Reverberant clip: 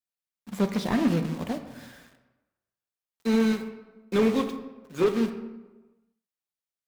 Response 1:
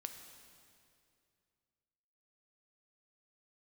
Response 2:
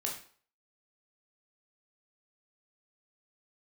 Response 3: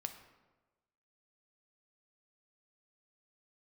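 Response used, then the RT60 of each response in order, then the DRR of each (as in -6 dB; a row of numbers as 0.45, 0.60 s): 3; 2.5, 0.50, 1.2 s; 5.5, -1.5, 6.5 dB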